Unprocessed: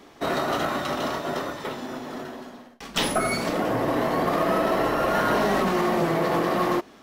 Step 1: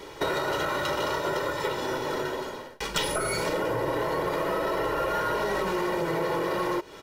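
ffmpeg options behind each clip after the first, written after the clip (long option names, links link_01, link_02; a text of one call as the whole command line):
ffmpeg -i in.wav -filter_complex "[0:a]aecho=1:1:2.1:0.76,asplit=2[link_01][link_02];[link_02]alimiter=limit=-19dB:level=0:latency=1,volume=0dB[link_03];[link_01][link_03]amix=inputs=2:normalize=0,acompressor=threshold=-25dB:ratio=6" out.wav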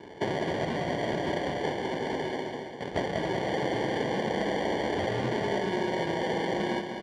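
ffmpeg -i in.wav -af "acrusher=samples=34:mix=1:aa=0.000001,highpass=110,lowpass=3700,aecho=1:1:198|396|594|792|990|1188|1386:0.447|0.241|0.13|0.0703|0.038|0.0205|0.0111,volume=-2dB" out.wav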